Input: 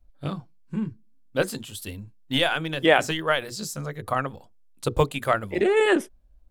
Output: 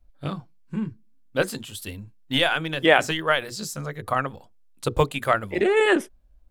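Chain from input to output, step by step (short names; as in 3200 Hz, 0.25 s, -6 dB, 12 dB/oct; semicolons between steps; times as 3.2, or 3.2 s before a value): bell 1800 Hz +2.5 dB 2.1 oct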